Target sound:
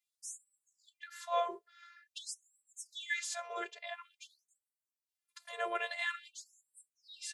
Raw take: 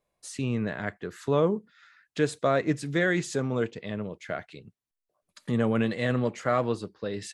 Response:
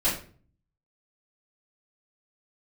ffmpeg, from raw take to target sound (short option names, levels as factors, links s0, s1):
-af "afftfilt=real='hypot(re,im)*cos(PI*b)':imag='0':win_size=512:overlap=0.75,afftfilt=real='re*gte(b*sr/1024,380*pow(7600/380,0.5+0.5*sin(2*PI*0.48*pts/sr)))':imag='im*gte(b*sr/1024,380*pow(7600/380,0.5+0.5*sin(2*PI*0.48*pts/sr)))':win_size=1024:overlap=0.75,volume=1.19"